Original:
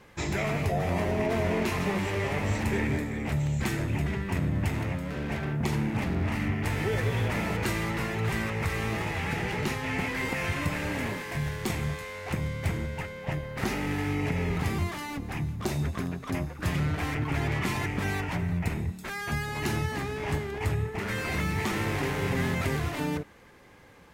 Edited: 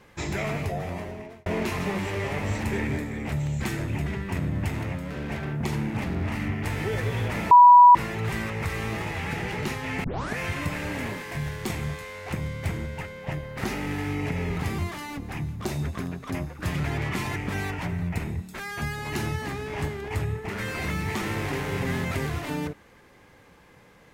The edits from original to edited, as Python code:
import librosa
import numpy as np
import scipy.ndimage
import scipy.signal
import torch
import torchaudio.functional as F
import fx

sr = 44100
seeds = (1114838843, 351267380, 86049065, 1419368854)

y = fx.edit(x, sr, fx.fade_out_span(start_s=0.5, length_s=0.96),
    fx.bleep(start_s=7.51, length_s=0.44, hz=977.0, db=-8.0),
    fx.tape_start(start_s=10.04, length_s=0.34),
    fx.cut(start_s=16.84, length_s=0.5), tone=tone)